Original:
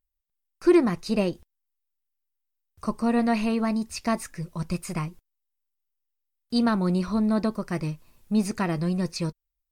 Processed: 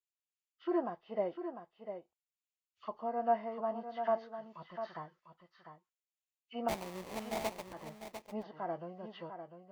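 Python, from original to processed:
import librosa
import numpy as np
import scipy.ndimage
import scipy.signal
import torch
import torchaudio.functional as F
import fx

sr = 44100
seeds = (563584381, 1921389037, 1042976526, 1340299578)

p1 = fx.freq_compress(x, sr, knee_hz=1200.0, ratio=1.5)
p2 = p1 * (1.0 - 0.46 / 2.0 + 0.46 / 2.0 * np.cos(2.0 * np.pi * 2.4 * (np.arange(len(p1)) / sr)))
p3 = fx.auto_wah(p2, sr, base_hz=700.0, top_hz=2700.0, q=2.6, full_db=-26.0, direction='down')
p4 = fx.low_shelf(p3, sr, hz=420.0, db=-5.0)
p5 = fx.sample_hold(p4, sr, seeds[0], rate_hz=1500.0, jitter_pct=20, at=(6.68, 7.72), fade=0.02)
p6 = p5 + fx.echo_single(p5, sr, ms=699, db=-9.0, dry=0)
p7 = fx.hpss(p6, sr, part='percussive', gain_db=-4)
y = p7 * librosa.db_to_amplitude(1.5)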